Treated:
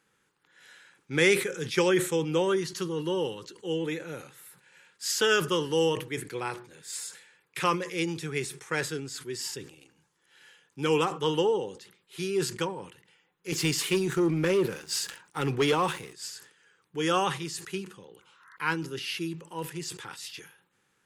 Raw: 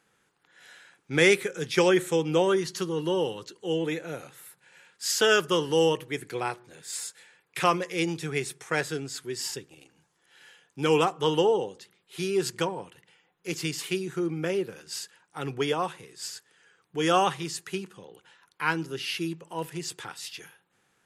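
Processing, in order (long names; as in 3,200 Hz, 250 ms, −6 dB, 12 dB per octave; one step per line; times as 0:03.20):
parametric band 680 Hz −12 dB 0.22 octaves
0:13.52–0:16.13: leveller curve on the samples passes 2
0:18.24–0:18.53: healed spectral selection 940–2,100 Hz both
level that may fall only so fast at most 120 dB per second
level −2 dB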